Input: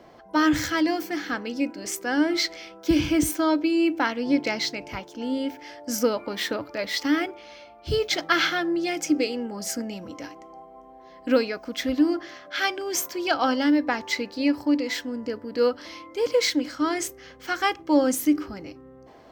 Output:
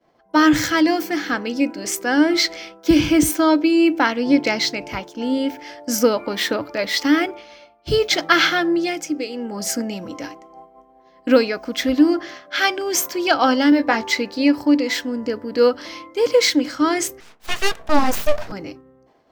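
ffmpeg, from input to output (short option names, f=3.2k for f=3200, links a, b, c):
-filter_complex "[0:a]asettb=1/sr,asplit=3[a][b][c];[a]atrim=end=13.704[d];[b]atrim=start=13.7:end=14.11,asetpts=PTS-STARTPTS,afade=t=in:d=0.004:c=qsin,afade=t=out:st=0.406:d=0.004:c=qsin,asplit=2[e][f];[f]adelay=18,volume=-6.5dB[g];[e][g]amix=inputs=2:normalize=0,atrim=end_sample=18081[h];[c]atrim=start=14.106[i];[d][h]acrossfade=d=0.004:c1=hsin:c2=qsin[j];[j][i]acrossfade=d=0.004:c1=qsin:c2=hsin,asettb=1/sr,asplit=3[k][l][m];[k]atrim=end=17.204[n];[l]atrim=start=17.2:end=18.52,asetpts=PTS-STARTPTS,afade=t=in:d=0.004:c=qsin,afade=t=out:st=1.316:d=0.004:c=qsin,aeval=exprs='abs(val(0))':c=same[o];[m]atrim=start=18.516[p];[n][o]acrossfade=d=0.004:c1=hsin:c2=qsin[q];[q][p]acrossfade=d=0.004:c1=qsin:c2=hsin,asplit=3[r][s][t];[r]atrim=end=9.08,asetpts=PTS-STARTPTS,afade=t=out:st=8.76:d=0.32:silence=0.375837[u];[s]atrim=start=9.08:end=9.28,asetpts=PTS-STARTPTS,volume=-8.5dB[v];[t]atrim=start=9.28,asetpts=PTS-STARTPTS,afade=t=in:d=0.32:silence=0.375837[w];[u][v][w]concat=n=3:v=0:a=1,agate=range=-33dB:threshold=-39dB:ratio=3:detection=peak,equalizer=f=76:t=o:w=0.25:g=-15,volume=6.5dB"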